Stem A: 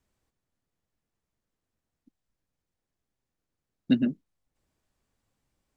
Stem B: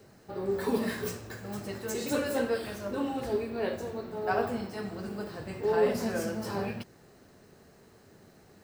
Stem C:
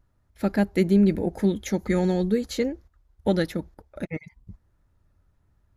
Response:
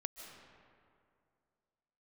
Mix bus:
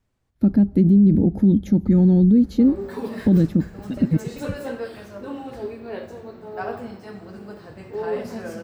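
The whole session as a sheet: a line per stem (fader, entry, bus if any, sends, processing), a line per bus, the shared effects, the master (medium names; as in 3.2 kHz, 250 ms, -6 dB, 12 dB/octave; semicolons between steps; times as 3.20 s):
+1.5 dB, 0.00 s, send -9 dB, compression, threshold -31 dBFS, peak gain reduction 13.5 dB
-1.0 dB, 2.30 s, no send, none
+2.0 dB, 0.00 s, send -23 dB, graphic EQ 125/250/500/1000/2000/4000/8000 Hz +9/+11/-5/-4/-12/-3/-11 dB; gate with hold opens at -41 dBFS; bass shelf 230 Hz +4.5 dB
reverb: on, RT60 2.4 s, pre-delay 110 ms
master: treble shelf 5 kHz -8 dB; peak limiter -8.5 dBFS, peak gain reduction 11.5 dB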